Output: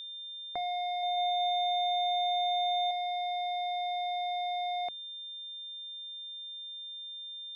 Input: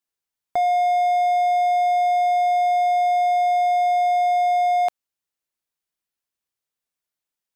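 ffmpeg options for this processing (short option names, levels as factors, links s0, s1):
-filter_complex "[0:a]acrossover=split=2900[s0][s1];[s1]acompressor=threshold=0.002:ratio=4:attack=1:release=60[s2];[s0][s2]amix=inputs=2:normalize=0,lowpass=5500,equalizer=f=2200:w=6.5:g=6,bandreject=f=60:t=h:w=6,bandreject=f=120:t=h:w=6,bandreject=f=180:t=h:w=6,acrossover=split=480|3000[s3][s4][s5];[s4]acompressor=threshold=0.0141:ratio=2[s6];[s3][s6][s5]amix=inputs=3:normalize=0,acrusher=bits=11:mix=0:aa=0.000001,aeval=exprs='val(0)+0.0251*sin(2*PI*3600*n/s)':c=same,asettb=1/sr,asplit=3[s7][s8][s9];[s7]atrim=end=0.864[s10];[s8]atrim=start=0.86:end=2.91,asetpts=PTS-STARTPTS,afade=t=in:d=0.004:c=qsin,afade=t=out:st=2.046:d=0.004:c=qsin,aecho=1:1:170|314.5|437.3|541.7|630.5:0.631|0.398|0.251|0.158|0.1,atrim=end_sample=90405[s11];[s9]atrim=start=2.906[s12];[s10][s11]acrossfade=d=0.004:c1=hsin:c2=qsin[s13];[s13][s12]acrossfade=d=0.004:c1=qsin:c2=hsin,volume=0.398"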